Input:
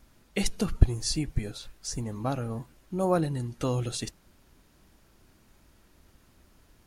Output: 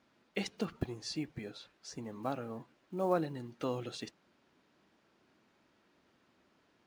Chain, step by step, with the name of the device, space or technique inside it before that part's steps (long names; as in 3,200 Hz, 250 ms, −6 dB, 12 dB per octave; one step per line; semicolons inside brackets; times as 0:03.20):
early digital voice recorder (band-pass filter 220–4,000 Hz; one scale factor per block 7 bits)
level −5 dB